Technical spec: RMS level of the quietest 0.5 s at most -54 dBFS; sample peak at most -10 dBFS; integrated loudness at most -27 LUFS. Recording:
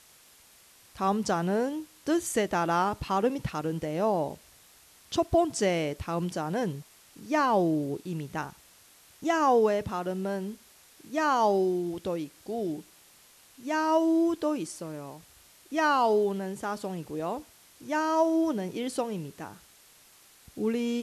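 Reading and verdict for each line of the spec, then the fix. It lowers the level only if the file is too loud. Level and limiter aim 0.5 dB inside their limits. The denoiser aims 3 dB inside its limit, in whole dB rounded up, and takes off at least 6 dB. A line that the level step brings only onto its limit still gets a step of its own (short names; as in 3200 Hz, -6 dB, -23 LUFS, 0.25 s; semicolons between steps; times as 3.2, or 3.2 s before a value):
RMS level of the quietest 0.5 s -57 dBFS: OK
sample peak -12.5 dBFS: OK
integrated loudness -28.5 LUFS: OK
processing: none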